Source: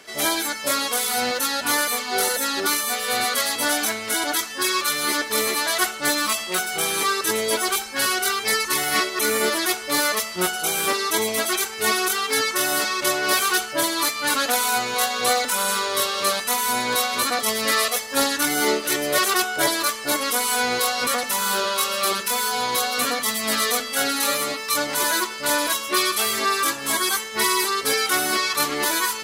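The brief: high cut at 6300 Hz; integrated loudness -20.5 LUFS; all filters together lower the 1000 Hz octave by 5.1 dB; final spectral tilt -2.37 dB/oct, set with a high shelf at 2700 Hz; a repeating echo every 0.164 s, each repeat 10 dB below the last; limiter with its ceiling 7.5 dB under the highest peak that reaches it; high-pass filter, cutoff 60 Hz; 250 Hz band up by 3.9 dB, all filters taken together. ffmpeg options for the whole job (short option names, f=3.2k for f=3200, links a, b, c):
-af "highpass=60,lowpass=6.3k,equalizer=f=250:t=o:g=5.5,equalizer=f=1k:t=o:g=-6,highshelf=f=2.7k:g=-5.5,alimiter=limit=-18dB:level=0:latency=1,aecho=1:1:164|328|492|656:0.316|0.101|0.0324|0.0104,volume=6dB"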